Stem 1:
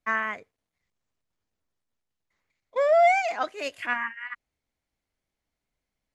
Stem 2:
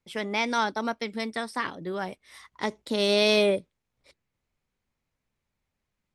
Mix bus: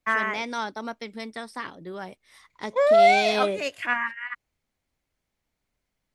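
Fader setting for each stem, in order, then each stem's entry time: +2.5, -4.5 dB; 0.00, 0.00 s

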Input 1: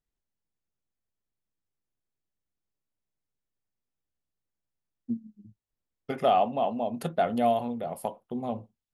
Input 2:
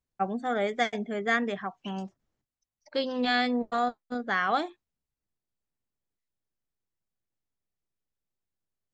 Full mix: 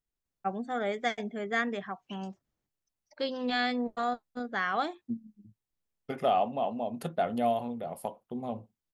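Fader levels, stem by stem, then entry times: -3.5, -3.5 dB; 0.00, 0.25 s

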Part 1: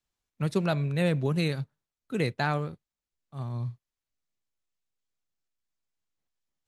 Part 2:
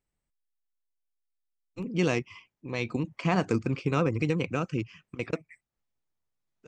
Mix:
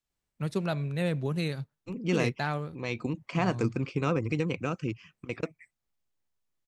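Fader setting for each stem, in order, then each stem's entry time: -3.5, -2.0 dB; 0.00, 0.10 s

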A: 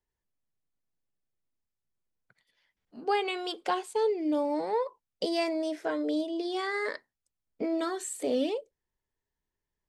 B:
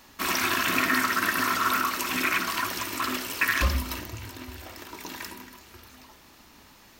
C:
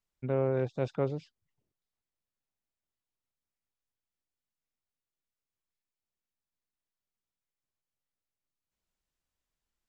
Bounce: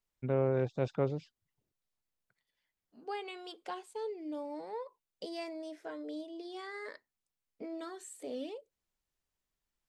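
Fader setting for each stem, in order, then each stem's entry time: -12.0 dB, off, -1.0 dB; 0.00 s, off, 0.00 s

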